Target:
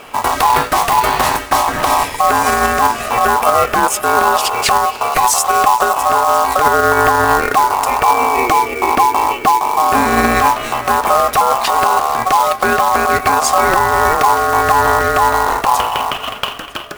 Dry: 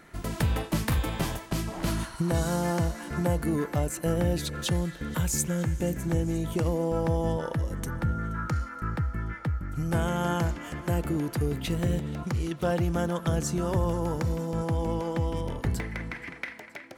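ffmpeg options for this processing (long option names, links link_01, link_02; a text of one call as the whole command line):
ffmpeg -i in.wav -filter_complex "[0:a]aeval=exprs='val(0)*sin(2*PI*930*n/s)':channel_layout=same,asettb=1/sr,asplit=3[link_01][link_02][link_03];[link_01]atrim=end=8.094[link_04];[link_02]atrim=start=8.09:end=10.35,asetpts=PTS-STARTPTS,afade=type=in:duration=0.004:curve=qsin,afade=type=out:start_time=2.256:duration=0.004:curve=qsin,equalizer=frequency=240:width=1.3:gain=9[link_05];[link_03]atrim=start=10.346[link_06];[link_04][link_05]acrossfade=duration=0.004:curve1=hsin:curve2=qsin[link_07];[link_07][link_06]acrossfade=duration=0.004:curve1=qsin:curve2=hsin,acrusher=bits=3:mode=log:mix=0:aa=0.000001,alimiter=level_in=21dB:limit=-1dB:release=50:level=0:latency=1,volume=-1dB" out.wav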